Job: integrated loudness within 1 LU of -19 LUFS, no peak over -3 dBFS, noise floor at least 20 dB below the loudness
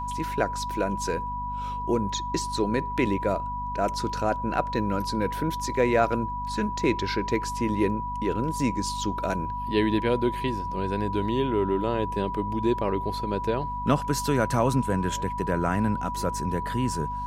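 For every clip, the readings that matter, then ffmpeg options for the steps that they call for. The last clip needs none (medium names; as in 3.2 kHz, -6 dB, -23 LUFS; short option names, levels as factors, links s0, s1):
hum 50 Hz; highest harmonic 250 Hz; hum level -34 dBFS; steady tone 980 Hz; tone level -30 dBFS; loudness -27.0 LUFS; peak level -8.0 dBFS; loudness target -19.0 LUFS
-> -af "bandreject=f=50:t=h:w=4,bandreject=f=100:t=h:w=4,bandreject=f=150:t=h:w=4,bandreject=f=200:t=h:w=4,bandreject=f=250:t=h:w=4"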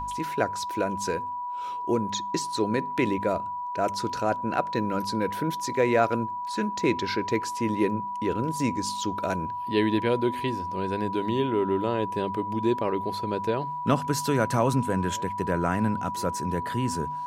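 hum not found; steady tone 980 Hz; tone level -30 dBFS
-> -af "bandreject=f=980:w=30"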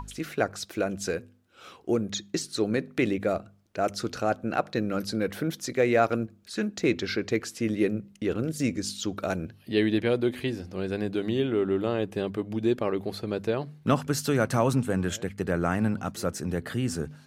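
steady tone not found; loudness -28.5 LUFS; peak level -8.5 dBFS; loudness target -19.0 LUFS
-> -af "volume=2.99,alimiter=limit=0.708:level=0:latency=1"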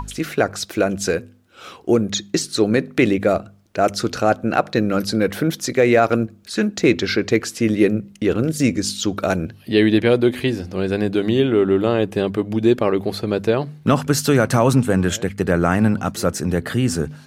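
loudness -19.5 LUFS; peak level -3.0 dBFS; noise floor -47 dBFS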